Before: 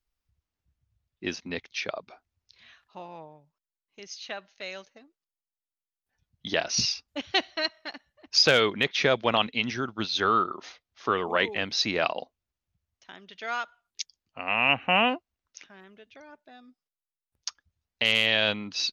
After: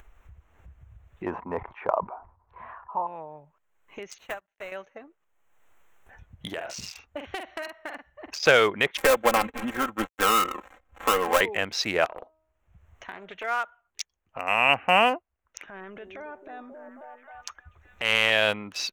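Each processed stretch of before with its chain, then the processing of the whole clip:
1.26–3.07 synth low-pass 980 Hz, resonance Q 6.8 + sustainer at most 150 dB/s
4.18–4.72 block floating point 3-bit + upward expander 2.5:1, over -47 dBFS
6.5–8.43 doubler 46 ms -8 dB + compressor 4:1, threshold -33 dBFS
8.97–11.41 switching dead time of 0.22 ms + comb 3.8 ms, depth 82% + three-band squash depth 40%
12.05–13.44 compressor 12:1, threshold -36 dBFS + de-hum 315.9 Hz, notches 5 + Doppler distortion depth 0.49 ms
15.67–18.3 transient shaper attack -8 dB, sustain +7 dB + delay with a stepping band-pass 0.268 s, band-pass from 330 Hz, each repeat 0.7 oct, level -5.5 dB
whole clip: Wiener smoothing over 9 samples; graphic EQ 125/250/4000 Hz -6/-8/-9 dB; upward compressor, threshold -37 dBFS; gain +5.5 dB

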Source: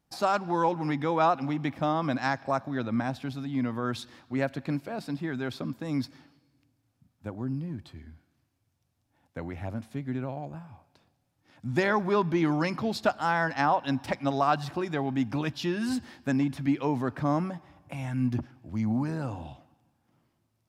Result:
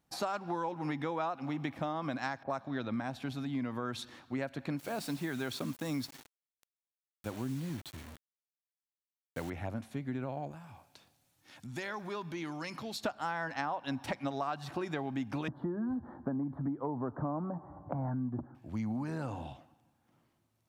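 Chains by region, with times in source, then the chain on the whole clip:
2.43–3 low-pass opened by the level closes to 890 Hz, open at -24 dBFS + bell 3600 Hz +4 dB 0.66 oct
4.79–9.5 high shelf 4400 Hz +9.5 dB + requantised 8-bit, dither none
10.51–13.04 high shelf 2400 Hz +11.5 dB + compressor 2:1, threshold -46 dBFS
15.48–18.55 inverse Chebyshev low-pass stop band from 2400 Hz + three-band squash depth 70%
whole clip: low shelf 240 Hz -4 dB; notch 5000 Hz, Q 13; compressor, threshold -32 dBFS

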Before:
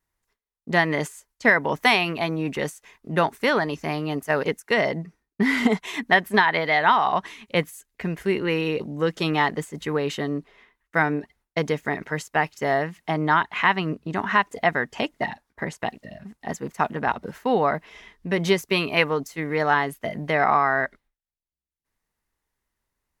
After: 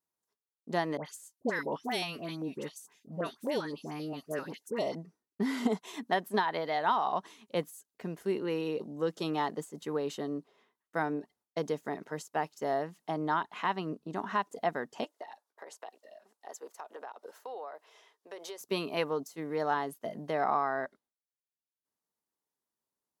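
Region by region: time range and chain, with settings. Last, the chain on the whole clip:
0.97–4.95 dispersion highs, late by 86 ms, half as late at 1500 Hz + stepped notch 7.6 Hz 370–1600 Hz
15.04–18.61 HPF 440 Hz 24 dB/oct + compressor, threshold -30 dBFS
whole clip: HPF 210 Hz 12 dB/oct; bell 2100 Hz -12 dB 1.1 oct; gain -7 dB

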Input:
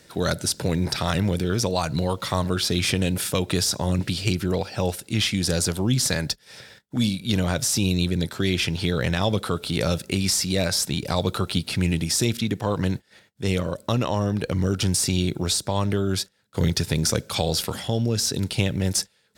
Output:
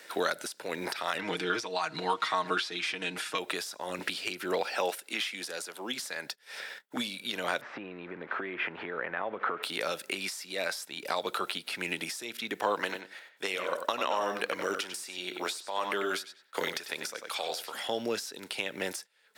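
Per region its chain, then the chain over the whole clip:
1.18–3.38 LPF 6300 Hz + bell 540 Hz -12.5 dB 0.32 oct + comb 6.4 ms, depth 70%
4.65–5.99 HPF 140 Hz 24 dB/oct + low shelf 180 Hz -7.5 dB
7.61–9.63 switching spikes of -21 dBFS + LPF 1900 Hz 24 dB/oct + compressor, threshold -28 dBFS
12.79–17.73 low shelf 270 Hz -10.5 dB + darkening echo 94 ms, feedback 17%, low-pass 4500 Hz, level -8 dB
whole clip: tilt +4.5 dB/oct; compressor 6:1, threshold -27 dBFS; three-band isolator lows -24 dB, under 240 Hz, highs -19 dB, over 2500 Hz; gain +5 dB

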